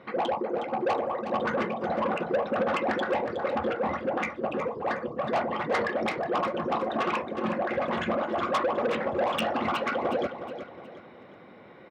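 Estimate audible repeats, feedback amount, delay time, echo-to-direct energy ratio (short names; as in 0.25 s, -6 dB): 3, 37%, 0.365 s, -9.5 dB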